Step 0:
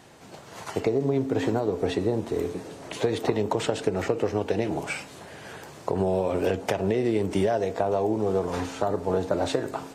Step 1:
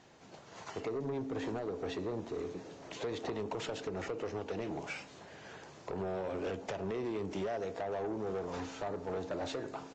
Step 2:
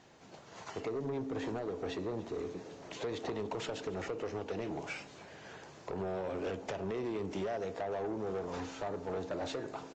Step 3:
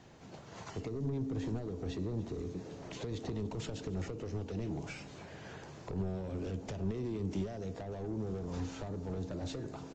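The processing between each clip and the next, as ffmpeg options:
-af "equalizer=f=97:w=1.4:g=-2.5,aresample=16000,asoftclip=type=tanh:threshold=-23dB,aresample=44100,volume=-8.5dB"
-af "aecho=1:1:289:0.1"
-filter_complex "[0:a]lowshelf=f=210:g=11.5,acrossover=split=290|3900[a][b][c];[b]acompressor=threshold=-45dB:ratio=6[d];[a][d][c]amix=inputs=3:normalize=0"

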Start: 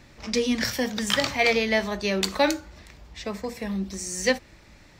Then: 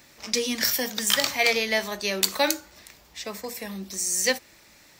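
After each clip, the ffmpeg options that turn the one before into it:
-af "aemphasis=mode=production:type=bsi,volume=-1.5dB"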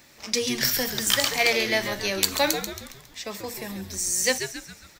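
-filter_complex "[0:a]asplit=6[a][b][c][d][e][f];[b]adelay=137,afreqshift=-110,volume=-8.5dB[g];[c]adelay=274,afreqshift=-220,volume=-15.1dB[h];[d]adelay=411,afreqshift=-330,volume=-21.6dB[i];[e]adelay=548,afreqshift=-440,volume=-28.2dB[j];[f]adelay=685,afreqshift=-550,volume=-34.7dB[k];[a][g][h][i][j][k]amix=inputs=6:normalize=0"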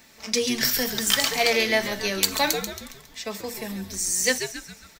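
-af "aecho=1:1:4.5:0.43"

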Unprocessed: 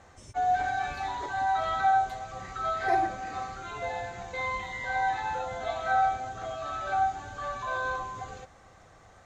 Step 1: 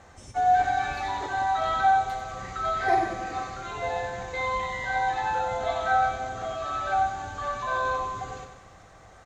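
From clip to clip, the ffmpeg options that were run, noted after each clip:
-af "aecho=1:1:93|186|279|372|465|558|651:0.398|0.223|0.125|0.0699|0.0392|0.0219|0.0123,volume=3dB"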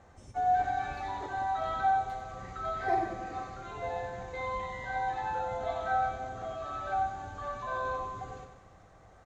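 -af "tiltshelf=f=1.3k:g=4,volume=-8dB"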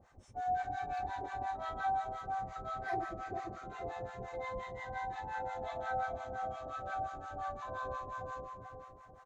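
-filter_complex "[0:a]asplit=2[a][b];[b]adelay=440,lowpass=f=2.3k:p=1,volume=-4dB,asplit=2[c][d];[d]adelay=440,lowpass=f=2.3k:p=1,volume=0.38,asplit=2[e][f];[f]adelay=440,lowpass=f=2.3k:p=1,volume=0.38,asplit=2[g][h];[h]adelay=440,lowpass=f=2.3k:p=1,volume=0.38,asplit=2[i][j];[j]adelay=440,lowpass=f=2.3k:p=1,volume=0.38[k];[a][c][e][g][i][k]amix=inputs=6:normalize=0,acrossover=split=760[l][m];[l]aeval=exprs='val(0)*(1-1/2+1/2*cos(2*PI*5.7*n/s))':c=same[n];[m]aeval=exprs='val(0)*(1-1/2-1/2*cos(2*PI*5.7*n/s))':c=same[o];[n][o]amix=inputs=2:normalize=0,volume=-2dB"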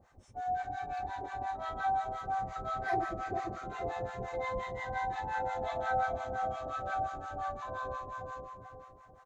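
-af "dynaudnorm=f=240:g=17:m=5dB"

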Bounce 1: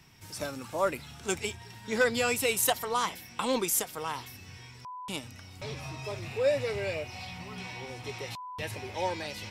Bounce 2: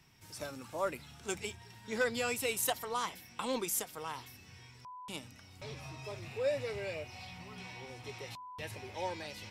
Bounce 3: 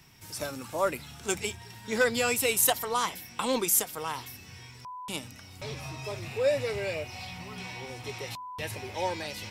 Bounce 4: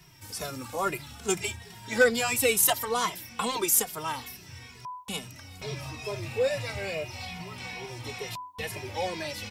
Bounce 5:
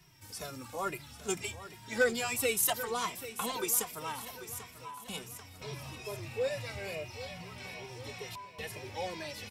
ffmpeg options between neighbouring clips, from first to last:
-af "bandreject=f=94.9:t=h:w=4,bandreject=f=189.8:t=h:w=4,bandreject=f=284.7:t=h:w=4,volume=-6.5dB"
-af "highshelf=f=9.3k:g=6.5,volume=7dB"
-filter_complex "[0:a]asplit=2[a][b];[b]adelay=2.4,afreqshift=-2.3[c];[a][c]amix=inputs=2:normalize=1,volume=4.5dB"
-af "aecho=1:1:790|1580|2370|3160|3950:0.211|0.112|0.0594|0.0315|0.0167,volume=-6.5dB"

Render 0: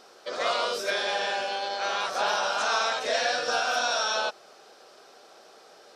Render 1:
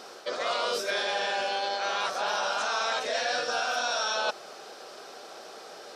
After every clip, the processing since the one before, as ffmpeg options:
-af "highpass=71,areverse,acompressor=threshold=-34dB:ratio=6,areverse,volume=7.5dB"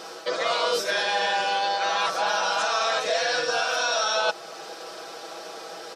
-filter_complex "[0:a]aecho=1:1:6.1:0.65,asplit=2[a][b];[b]alimiter=limit=-22.5dB:level=0:latency=1:release=390,volume=-2.5dB[c];[a][c]amix=inputs=2:normalize=0"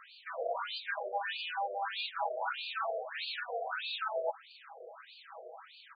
-af "afftfilt=real='re*between(b*sr/1024,510*pow(3400/510,0.5+0.5*sin(2*PI*1.6*pts/sr))/1.41,510*pow(3400/510,0.5+0.5*sin(2*PI*1.6*pts/sr))*1.41)':imag='im*between(b*sr/1024,510*pow(3400/510,0.5+0.5*sin(2*PI*1.6*pts/sr))/1.41,510*pow(3400/510,0.5+0.5*sin(2*PI*1.6*pts/sr))*1.41)':win_size=1024:overlap=0.75,volume=-6.5dB"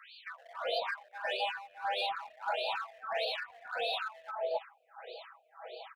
-filter_complex "[0:a]asplit=2[a][b];[b]asoftclip=type=hard:threshold=-38dB,volume=-9.5dB[c];[a][c]amix=inputs=2:normalize=0,acrossover=split=1200[d][e];[d]adelay=270[f];[f][e]amix=inputs=2:normalize=0"

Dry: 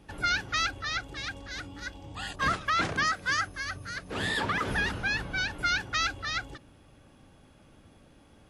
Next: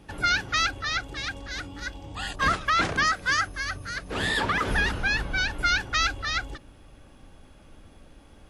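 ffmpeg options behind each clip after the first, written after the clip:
-af "asubboost=boost=3.5:cutoff=57,volume=4dB"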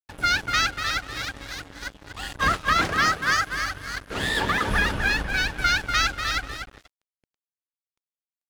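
-filter_complex "[0:a]asplit=2[a][b];[b]adelay=243,lowpass=f=3.2k:p=1,volume=-5dB,asplit=2[c][d];[d]adelay=243,lowpass=f=3.2k:p=1,volume=0.3,asplit=2[e][f];[f]adelay=243,lowpass=f=3.2k:p=1,volume=0.3,asplit=2[g][h];[h]adelay=243,lowpass=f=3.2k:p=1,volume=0.3[i];[a][c][e][g][i]amix=inputs=5:normalize=0,aeval=exprs='sgn(val(0))*max(abs(val(0))-0.0126,0)':c=same,volume=2.5dB"

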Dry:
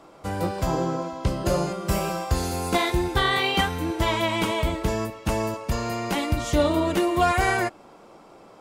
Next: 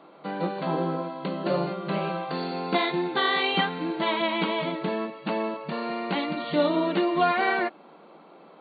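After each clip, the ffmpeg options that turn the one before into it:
-af "afftfilt=real='re*between(b*sr/4096,140,4600)':imag='im*between(b*sr/4096,140,4600)':win_size=4096:overlap=0.75,volume=-1.5dB"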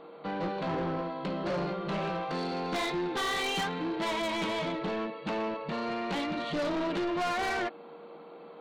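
-af "aeval=exprs='val(0)+0.00398*sin(2*PI*470*n/s)':c=same,asoftclip=type=tanh:threshold=-28dB"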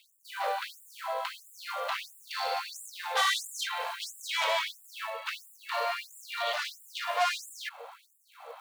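-af "acrusher=bits=6:mode=log:mix=0:aa=0.000001,afftfilt=real='re*gte(b*sr/1024,460*pow(7200/460,0.5+0.5*sin(2*PI*1.5*pts/sr)))':imag='im*gte(b*sr/1024,460*pow(7200/460,0.5+0.5*sin(2*PI*1.5*pts/sr)))':win_size=1024:overlap=0.75,volume=6.5dB"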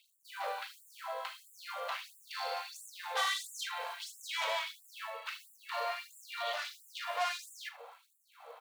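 -af "aecho=1:1:40|77:0.237|0.141,volume=-6dB"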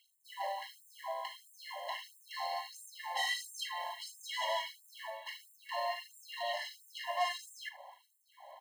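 -af "afftfilt=real='re*eq(mod(floor(b*sr/1024/550),2),1)':imag='im*eq(mod(floor(b*sr/1024/550),2),1)':win_size=1024:overlap=0.75,volume=1.5dB"

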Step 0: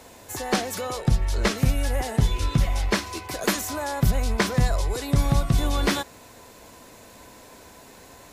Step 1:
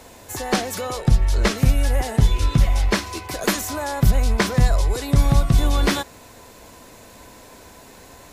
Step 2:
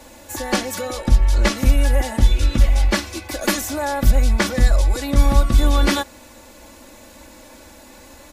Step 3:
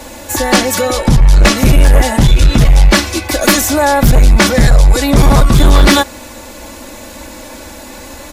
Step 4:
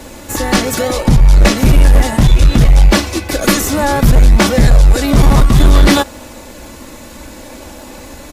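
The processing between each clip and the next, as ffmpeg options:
-af "lowshelf=f=65:g=5.5,volume=2.5dB"
-af "aecho=1:1:3.5:0.96,volume=-1.5dB"
-af "aeval=exprs='0.794*sin(PI/2*2.82*val(0)/0.794)':c=same"
-filter_complex "[0:a]asplit=2[a][b];[b]acrusher=samples=37:mix=1:aa=0.000001:lfo=1:lforange=37:lforate=0.61,volume=-5dB[c];[a][c]amix=inputs=2:normalize=0,aresample=32000,aresample=44100,volume=-4dB"

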